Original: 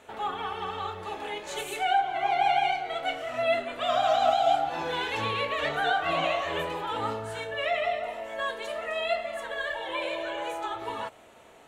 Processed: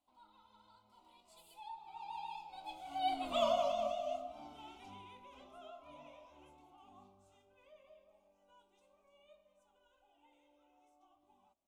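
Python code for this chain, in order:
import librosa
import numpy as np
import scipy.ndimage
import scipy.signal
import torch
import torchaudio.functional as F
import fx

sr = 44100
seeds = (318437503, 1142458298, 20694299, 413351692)

y = fx.doppler_pass(x, sr, speed_mps=44, closest_m=6.6, pass_at_s=3.34)
y = fx.bass_treble(y, sr, bass_db=8, treble_db=2)
y = fx.fixed_phaser(y, sr, hz=460.0, stages=6)
y = y * librosa.db_to_amplitude(-2.0)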